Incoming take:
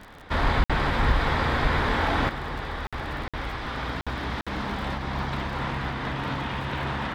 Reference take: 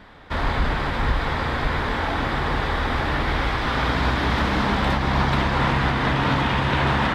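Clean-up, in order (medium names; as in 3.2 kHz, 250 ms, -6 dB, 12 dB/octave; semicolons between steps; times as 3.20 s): de-click; interpolate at 0.64/2.87/3.28/4.01/4.41 s, 56 ms; trim 0 dB, from 2.29 s +9 dB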